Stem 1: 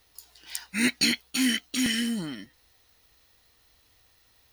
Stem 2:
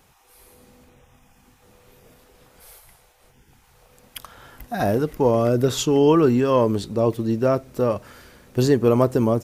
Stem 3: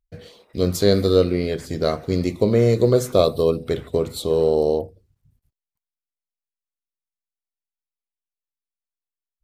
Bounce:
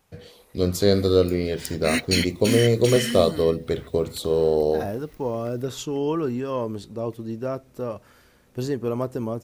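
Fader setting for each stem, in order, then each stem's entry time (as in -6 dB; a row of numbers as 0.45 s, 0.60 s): 0.0 dB, -9.0 dB, -2.0 dB; 1.10 s, 0.00 s, 0.00 s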